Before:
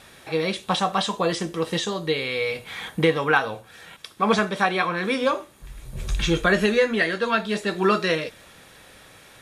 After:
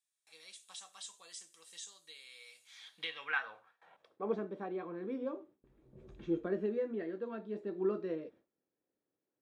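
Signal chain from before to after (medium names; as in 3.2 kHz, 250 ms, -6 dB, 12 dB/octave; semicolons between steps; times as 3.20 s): gate with hold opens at -35 dBFS; band-pass sweep 8 kHz -> 330 Hz, 2.57–4.38 s; trim -8.5 dB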